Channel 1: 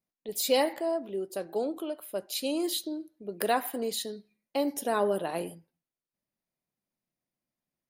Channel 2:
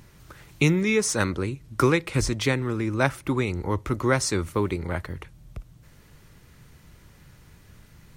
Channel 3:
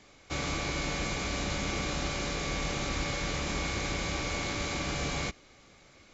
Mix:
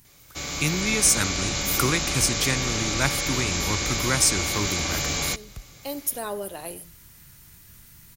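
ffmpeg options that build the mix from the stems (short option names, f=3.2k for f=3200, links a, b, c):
-filter_complex "[0:a]adelay=1300,volume=-11.5dB[a];[1:a]equalizer=f=490:w=1.5:g=-6.5,volume=-8.5dB,asplit=2[b][c];[2:a]adelay=50,volume=-3.5dB[d];[c]apad=whole_len=405657[e];[a][e]sidechaincompress=threshold=-47dB:ratio=8:attack=16:release=417[f];[f][b][d]amix=inputs=3:normalize=0,aemphasis=mode=production:type=75fm,dynaudnorm=f=260:g=5:m=7dB"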